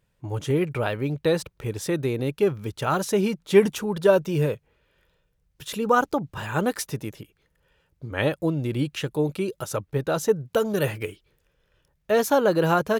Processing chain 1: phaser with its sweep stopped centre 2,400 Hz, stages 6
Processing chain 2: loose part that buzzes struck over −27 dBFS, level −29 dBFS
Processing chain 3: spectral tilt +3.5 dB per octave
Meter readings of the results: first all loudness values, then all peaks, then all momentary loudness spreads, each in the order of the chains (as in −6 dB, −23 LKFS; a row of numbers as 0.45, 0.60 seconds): −28.5, −24.5, −26.0 LKFS; −9.5, −4.5, −6.0 dBFS; 11, 12, 10 LU